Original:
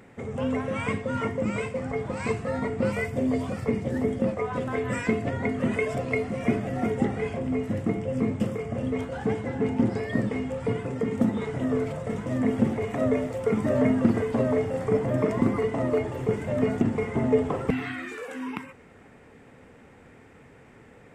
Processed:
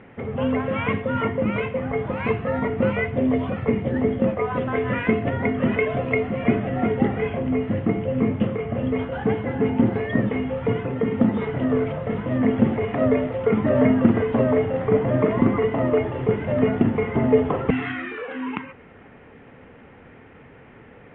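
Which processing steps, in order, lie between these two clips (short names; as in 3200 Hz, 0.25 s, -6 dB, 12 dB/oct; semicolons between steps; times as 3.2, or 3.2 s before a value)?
elliptic low-pass 3200 Hz, stop band 50 dB; gain +5.5 dB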